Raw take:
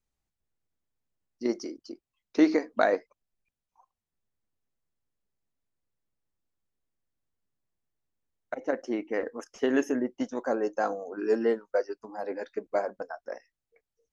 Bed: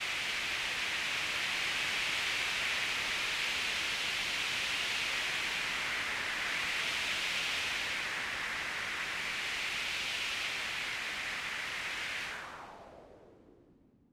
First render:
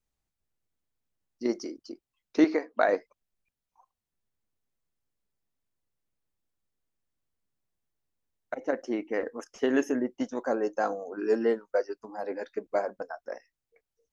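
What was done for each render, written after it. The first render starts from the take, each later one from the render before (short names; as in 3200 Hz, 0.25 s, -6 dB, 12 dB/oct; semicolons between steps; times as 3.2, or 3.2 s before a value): 2.44–2.89 tone controls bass -13 dB, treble -9 dB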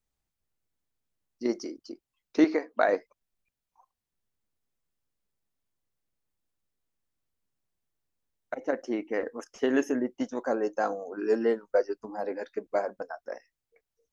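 11.63–12.29 low shelf 430 Hz +6.5 dB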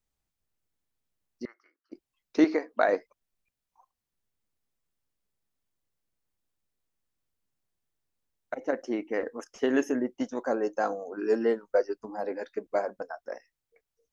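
1.45–1.92 Butterworth band-pass 1500 Hz, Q 2.2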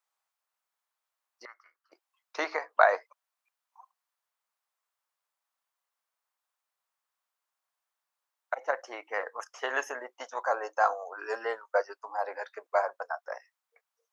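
HPF 610 Hz 24 dB/oct; bell 1100 Hz +9.5 dB 1.2 oct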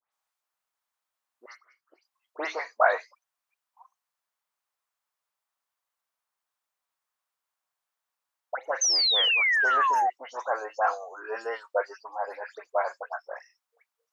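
dispersion highs, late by 0.131 s, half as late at 2800 Hz; 8.81–10.1 painted sound fall 720–6400 Hz -23 dBFS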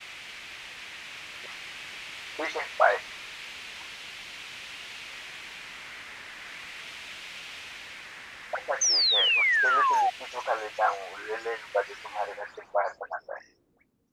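add bed -7.5 dB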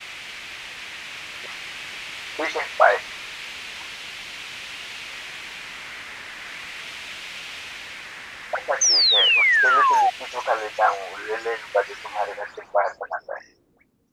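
gain +6 dB; limiter -1 dBFS, peak gain reduction 0.5 dB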